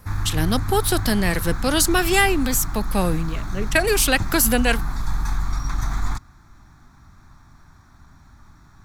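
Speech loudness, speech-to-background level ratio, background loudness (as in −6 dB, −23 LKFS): −20.5 LKFS, 8.5 dB, −29.0 LKFS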